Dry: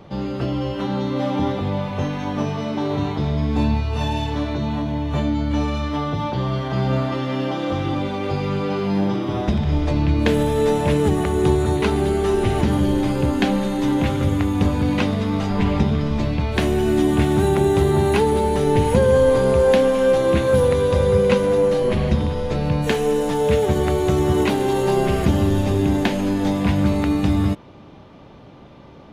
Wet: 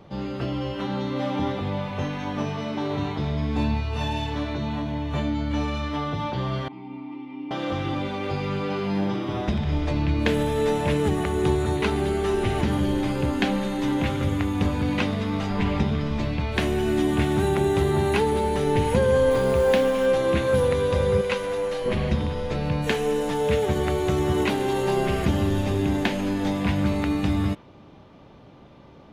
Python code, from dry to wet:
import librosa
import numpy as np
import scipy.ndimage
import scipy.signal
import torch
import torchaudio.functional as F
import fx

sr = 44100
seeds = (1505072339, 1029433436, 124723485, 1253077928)

y = fx.dynamic_eq(x, sr, hz=2200.0, q=0.7, threshold_db=-39.0, ratio=4.0, max_db=4)
y = fx.vowel_filter(y, sr, vowel='u', at=(6.68, 7.51))
y = fx.quant_float(y, sr, bits=4, at=(19.31, 20.06))
y = fx.peak_eq(y, sr, hz=170.0, db=-11.5, octaves=2.7, at=(21.21, 21.86))
y = F.gain(torch.from_numpy(y), -5.0).numpy()